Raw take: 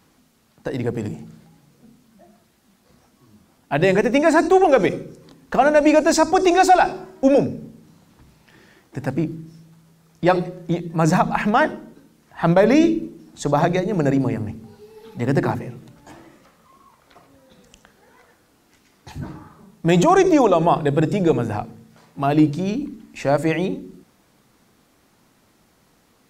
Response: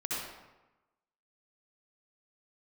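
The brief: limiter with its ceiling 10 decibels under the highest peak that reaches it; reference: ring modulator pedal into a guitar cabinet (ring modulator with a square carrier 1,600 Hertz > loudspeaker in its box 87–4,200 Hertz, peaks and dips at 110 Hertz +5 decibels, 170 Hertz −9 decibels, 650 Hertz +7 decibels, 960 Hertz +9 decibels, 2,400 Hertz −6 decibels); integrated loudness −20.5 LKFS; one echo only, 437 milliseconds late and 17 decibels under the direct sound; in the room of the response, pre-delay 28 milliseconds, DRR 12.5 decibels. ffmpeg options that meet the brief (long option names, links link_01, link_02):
-filter_complex "[0:a]alimiter=limit=-15dB:level=0:latency=1,aecho=1:1:437:0.141,asplit=2[link_01][link_02];[1:a]atrim=start_sample=2205,adelay=28[link_03];[link_02][link_03]afir=irnorm=-1:irlink=0,volume=-17.5dB[link_04];[link_01][link_04]amix=inputs=2:normalize=0,aeval=exprs='val(0)*sgn(sin(2*PI*1600*n/s))':channel_layout=same,highpass=87,equalizer=frequency=110:width_type=q:width=4:gain=5,equalizer=frequency=170:width_type=q:width=4:gain=-9,equalizer=frequency=650:width_type=q:width=4:gain=7,equalizer=frequency=960:width_type=q:width=4:gain=9,equalizer=frequency=2400:width_type=q:width=4:gain=-6,lowpass=frequency=4200:width=0.5412,lowpass=frequency=4200:width=1.3066,volume=2dB"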